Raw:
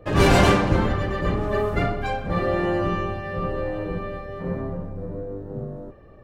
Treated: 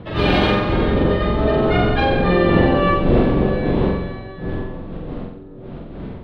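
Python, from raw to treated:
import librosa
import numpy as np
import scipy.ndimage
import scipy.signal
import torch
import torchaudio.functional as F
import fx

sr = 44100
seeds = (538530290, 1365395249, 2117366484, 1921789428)

p1 = fx.dmg_wind(x, sr, seeds[0], corner_hz=310.0, level_db=-24.0)
p2 = fx.doppler_pass(p1, sr, speed_mps=12, closest_m=6.4, pass_at_s=2.49)
p3 = fx.dynamic_eq(p2, sr, hz=380.0, q=0.87, threshold_db=-34.0, ratio=4.0, max_db=5)
p4 = fx.over_compress(p3, sr, threshold_db=-26.0, ratio=-0.5)
p5 = p3 + (p4 * 10.0 ** (-1.5 / 20.0))
p6 = fx.high_shelf_res(p5, sr, hz=5200.0, db=-13.0, q=3.0)
p7 = p6 + fx.room_flutter(p6, sr, wall_m=7.7, rt60_s=0.68, dry=0)
y = p7 * 10.0 ** (1.5 / 20.0)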